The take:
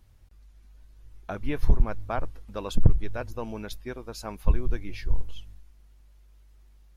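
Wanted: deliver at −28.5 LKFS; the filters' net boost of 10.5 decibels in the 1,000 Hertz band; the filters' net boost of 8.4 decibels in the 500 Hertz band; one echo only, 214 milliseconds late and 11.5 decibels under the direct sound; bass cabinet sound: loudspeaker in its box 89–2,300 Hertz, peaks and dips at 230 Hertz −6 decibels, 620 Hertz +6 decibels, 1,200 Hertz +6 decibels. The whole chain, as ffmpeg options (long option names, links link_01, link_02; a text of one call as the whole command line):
ffmpeg -i in.wav -af "highpass=frequency=89:width=0.5412,highpass=frequency=89:width=1.3066,equalizer=frequency=230:width_type=q:width=4:gain=-6,equalizer=frequency=620:width_type=q:width=4:gain=6,equalizer=frequency=1200:width_type=q:width=4:gain=6,lowpass=frequency=2300:width=0.5412,lowpass=frequency=2300:width=1.3066,equalizer=frequency=500:width_type=o:gain=4,equalizer=frequency=1000:width_type=o:gain=8.5,aecho=1:1:214:0.266,volume=1dB" out.wav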